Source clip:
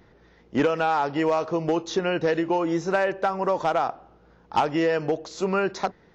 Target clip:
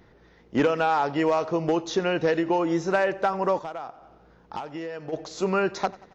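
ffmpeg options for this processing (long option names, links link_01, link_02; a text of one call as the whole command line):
ffmpeg -i in.wav -filter_complex "[0:a]asplit=2[link_01][link_02];[link_02]aecho=0:1:91|182|273|364:0.0891|0.0463|0.0241|0.0125[link_03];[link_01][link_03]amix=inputs=2:normalize=0,asplit=3[link_04][link_05][link_06];[link_04]afade=type=out:start_time=3.58:duration=0.02[link_07];[link_05]acompressor=threshold=-36dB:ratio=3,afade=type=in:start_time=3.58:duration=0.02,afade=type=out:start_time=5.12:duration=0.02[link_08];[link_06]afade=type=in:start_time=5.12:duration=0.02[link_09];[link_07][link_08][link_09]amix=inputs=3:normalize=0" out.wav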